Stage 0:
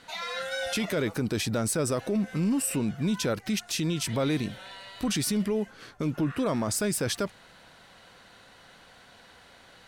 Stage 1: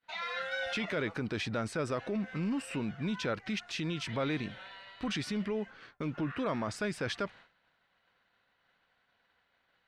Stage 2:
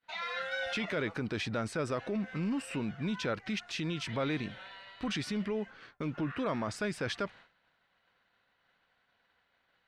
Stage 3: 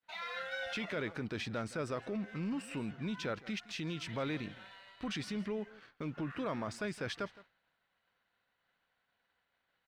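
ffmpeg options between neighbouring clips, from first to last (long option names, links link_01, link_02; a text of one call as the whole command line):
ffmpeg -i in.wav -af "lowpass=2000,agate=range=-33dB:threshold=-44dB:ratio=3:detection=peak,tiltshelf=frequency=1500:gain=-7.5" out.wav
ffmpeg -i in.wav -af anull out.wav
ffmpeg -i in.wav -filter_complex "[0:a]aecho=1:1:164:0.119,asplit=2[link_01][link_02];[link_02]aeval=exprs='sgn(val(0))*max(abs(val(0))-0.00266,0)':channel_layout=same,volume=-7.5dB[link_03];[link_01][link_03]amix=inputs=2:normalize=0,volume=-7dB" out.wav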